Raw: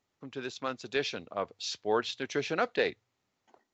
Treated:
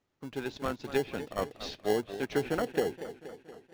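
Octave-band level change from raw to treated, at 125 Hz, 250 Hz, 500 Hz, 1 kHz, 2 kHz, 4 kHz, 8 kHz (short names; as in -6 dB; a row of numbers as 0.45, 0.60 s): +5.0 dB, +3.5 dB, +1.0 dB, -2.0 dB, -4.0 dB, -5.5 dB, n/a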